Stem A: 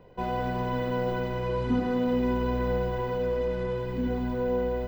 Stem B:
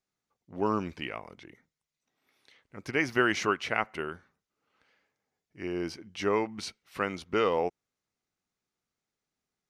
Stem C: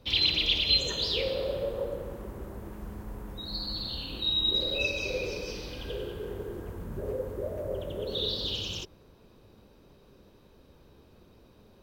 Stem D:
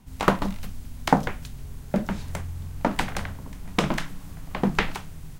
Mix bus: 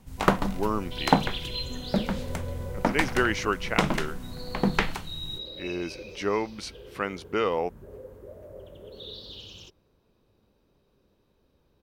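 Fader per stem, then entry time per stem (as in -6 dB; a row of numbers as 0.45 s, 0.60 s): -15.0 dB, +0.5 dB, -10.5 dB, -1.0 dB; 0.00 s, 0.00 s, 0.85 s, 0.00 s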